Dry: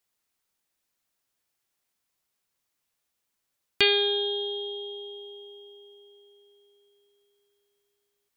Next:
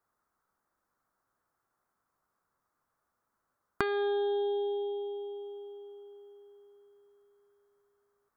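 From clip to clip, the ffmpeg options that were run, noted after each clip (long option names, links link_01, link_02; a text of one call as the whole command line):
ffmpeg -i in.wav -af "acompressor=threshold=-29dB:ratio=4,highshelf=frequency=1900:width_type=q:width=3:gain=-13.5,volume=4.5dB" out.wav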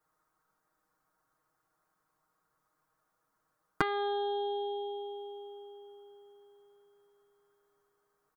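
ffmpeg -i in.wav -af "aecho=1:1:6.4:0.97" out.wav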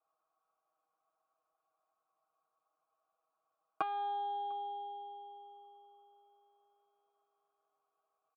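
ffmpeg -i in.wav -filter_complex "[0:a]asplit=3[link_01][link_02][link_03];[link_01]bandpass=frequency=730:width_type=q:width=8,volume=0dB[link_04];[link_02]bandpass=frequency=1090:width_type=q:width=8,volume=-6dB[link_05];[link_03]bandpass=frequency=2440:width_type=q:width=8,volume=-9dB[link_06];[link_04][link_05][link_06]amix=inputs=3:normalize=0,aecho=1:1:6.1:0.45,asplit=2[link_07][link_08];[link_08]adelay=699.7,volume=-26dB,highshelf=frequency=4000:gain=-15.7[link_09];[link_07][link_09]amix=inputs=2:normalize=0,volume=4.5dB" out.wav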